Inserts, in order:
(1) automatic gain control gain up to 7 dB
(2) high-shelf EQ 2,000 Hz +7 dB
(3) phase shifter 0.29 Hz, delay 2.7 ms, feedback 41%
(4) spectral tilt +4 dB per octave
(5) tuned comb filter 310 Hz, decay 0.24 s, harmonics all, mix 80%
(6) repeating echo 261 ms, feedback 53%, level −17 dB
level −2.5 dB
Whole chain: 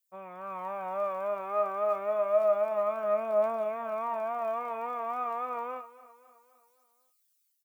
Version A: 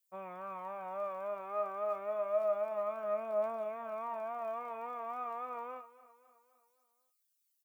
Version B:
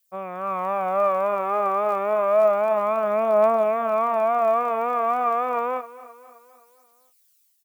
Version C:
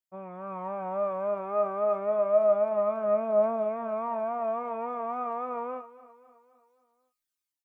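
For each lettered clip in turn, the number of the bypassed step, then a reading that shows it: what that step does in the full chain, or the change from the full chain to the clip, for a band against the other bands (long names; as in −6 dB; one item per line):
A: 1, change in momentary loudness spread −2 LU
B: 5, 500 Hz band −2.5 dB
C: 4, 250 Hz band +8.5 dB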